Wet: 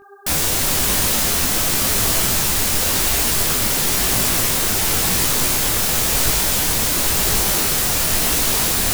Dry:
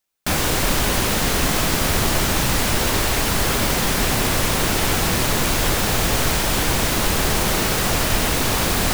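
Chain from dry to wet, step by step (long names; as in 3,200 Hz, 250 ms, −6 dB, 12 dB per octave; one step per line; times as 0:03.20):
high-shelf EQ 4,400 Hz +12 dB
hum with harmonics 400 Hz, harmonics 4, −41 dBFS
micro pitch shift up and down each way 33 cents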